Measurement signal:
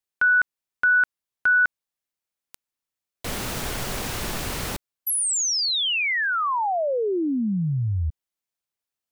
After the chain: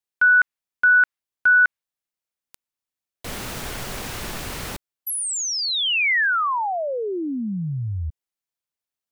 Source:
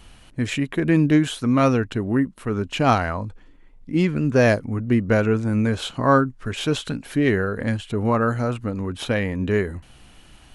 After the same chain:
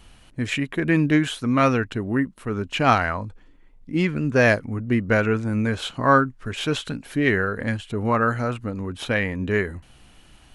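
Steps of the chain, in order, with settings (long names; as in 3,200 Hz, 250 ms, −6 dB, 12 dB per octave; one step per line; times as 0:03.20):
dynamic equaliser 1,900 Hz, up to +7 dB, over −34 dBFS, Q 0.75
level −2.5 dB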